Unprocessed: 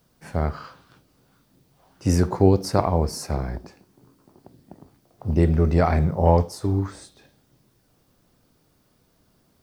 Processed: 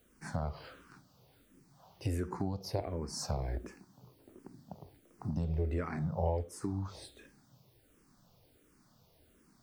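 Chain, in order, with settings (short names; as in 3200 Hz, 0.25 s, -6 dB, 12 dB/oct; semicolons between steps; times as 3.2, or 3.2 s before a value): compressor 4:1, threshold -30 dBFS, peak gain reduction 17 dB; endless phaser -1.4 Hz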